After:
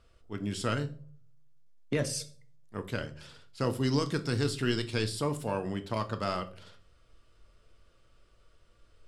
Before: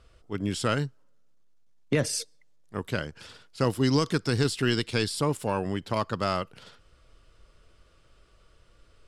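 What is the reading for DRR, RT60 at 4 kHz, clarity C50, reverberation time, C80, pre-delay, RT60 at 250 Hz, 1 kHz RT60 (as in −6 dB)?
8.0 dB, 0.30 s, 16.0 dB, 0.45 s, 20.5 dB, 3 ms, 0.65 s, 0.35 s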